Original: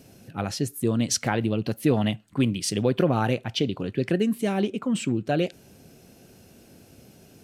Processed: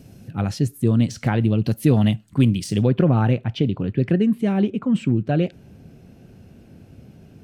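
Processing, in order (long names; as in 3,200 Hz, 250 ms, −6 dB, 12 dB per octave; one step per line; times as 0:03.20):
de-essing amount 60%
bass and treble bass +10 dB, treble −2 dB, from 0:01.63 treble +4 dB, from 0:02.86 treble −12 dB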